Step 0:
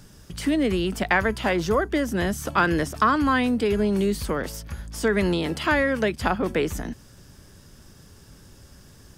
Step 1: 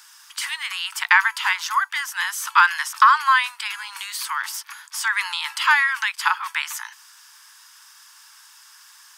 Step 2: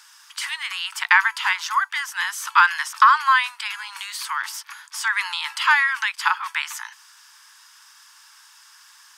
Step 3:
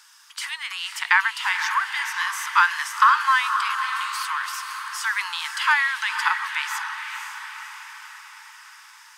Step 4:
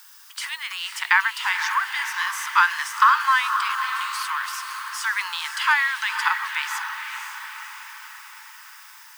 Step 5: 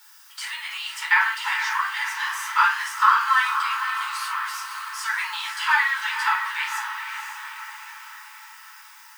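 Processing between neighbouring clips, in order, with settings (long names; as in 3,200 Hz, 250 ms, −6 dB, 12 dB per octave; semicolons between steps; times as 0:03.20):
Butterworth high-pass 890 Hz 96 dB per octave; level +7.5 dB
high-shelf EQ 11,000 Hz −8.5 dB
feedback delay with all-pass diffusion 520 ms, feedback 56%, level −7 dB; level −2.5 dB
background noise violet −50 dBFS
rectangular room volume 310 cubic metres, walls furnished, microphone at 4.4 metres; level −8 dB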